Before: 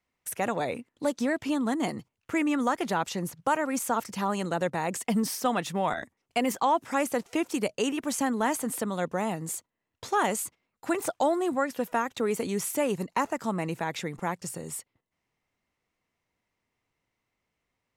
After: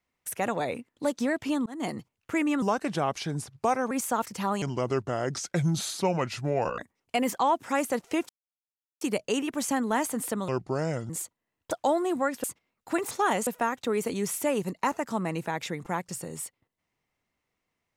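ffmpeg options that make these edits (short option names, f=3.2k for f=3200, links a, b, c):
-filter_complex "[0:a]asplit=13[a][b][c][d][e][f][g][h][i][j][k][l][m];[a]atrim=end=1.66,asetpts=PTS-STARTPTS,afade=t=out:st=1.656:d=0.004:c=hsin[n];[b]atrim=start=1.66:end=2.624,asetpts=PTS-STARTPTS,afade=t=in:d=0.25[o];[c]atrim=start=2.62:end=3.69,asetpts=PTS-STARTPTS,asetrate=36603,aresample=44100[p];[d]atrim=start=3.686:end=4.404[q];[e]atrim=start=4.4:end=6,asetpts=PTS-STARTPTS,asetrate=32634,aresample=44100,atrim=end_sample=95351,asetpts=PTS-STARTPTS[r];[f]atrim=start=5.996:end=7.51,asetpts=PTS-STARTPTS,afade=t=out:st=1.51:d=0.004:c=hsin,apad=pad_dur=0.72[s];[g]atrim=start=7.51:end=8.984,asetpts=PTS-STARTPTS,afade=t=in:d=0.004:c=hsin[t];[h]atrim=start=8.98:end=9.43,asetpts=PTS-STARTPTS,asetrate=32193,aresample=44100[u];[i]atrim=start=9.426:end=10.042[v];[j]atrim=start=11.068:end=11.802[w];[k]atrim=start=10.398:end=11.072[x];[l]atrim=start=10.038:end=10.402[y];[m]atrim=start=11.798[z];[n][o]concat=n=2:v=0:a=1[aa];[aa][p]acrossfade=d=0.004:c1=hsin:c2=hsin[ab];[ab][q]acrossfade=d=0.004:c1=hsin:c2=hsin[ac];[ac][r]acrossfade=d=0.004:c1=hsin:c2=hsin[ad];[s][t]concat=n=2:v=0:a=1[ae];[ad][ae]acrossfade=d=0.004:c1=hsin:c2=hsin[af];[af][u]acrossfade=d=0.004:c1=hsin:c2=hsin[ag];[ag][v]acrossfade=d=0.004:c1=hsin:c2=hsin[ah];[ah][w]acrossfade=d=0.004:c1=hsin:c2=hsin[ai];[ai][x]acrossfade=d=0.004:c1=hsin:c2=hsin[aj];[aj][y]acrossfade=d=0.004:c1=hsin:c2=hsin[ak];[ak][z]acrossfade=d=0.004:c1=hsin:c2=hsin"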